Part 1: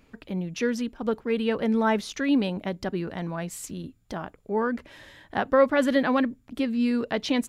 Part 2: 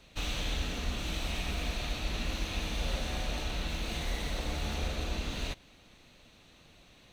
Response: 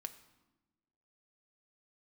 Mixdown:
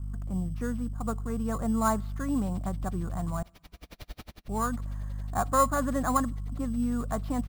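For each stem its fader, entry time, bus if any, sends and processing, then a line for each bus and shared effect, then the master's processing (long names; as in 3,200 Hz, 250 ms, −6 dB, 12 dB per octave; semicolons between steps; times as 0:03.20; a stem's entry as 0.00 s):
+2.5 dB, 0.00 s, muted 0:03.43–0:04.48, send −13 dB, hollow resonant body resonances 720/1,100 Hz, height 10 dB, ringing for 25 ms; mains hum 50 Hz, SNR 13 dB; drawn EQ curve 120 Hz 0 dB, 440 Hz −17 dB, 1,300 Hz −6 dB, 2,500 Hz −27 dB, 5,100 Hz −20 dB
+1.0 dB, 2.20 s, no send, brickwall limiter −29 dBFS, peak gain reduction 7.5 dB; notch filter 2,600 Hz, Q 12; tremolo with a sine in dB 11 Hz, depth 39 dB; automatic ducking −13 dB, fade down 0.25 s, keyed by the first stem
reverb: on, RT60 1.1 s, pre-delay 4 ms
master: parametric band 6,200 Hz −9.5 dB 0.93 octaves; sample-rate reduction 8,200 Hz, jitter 0%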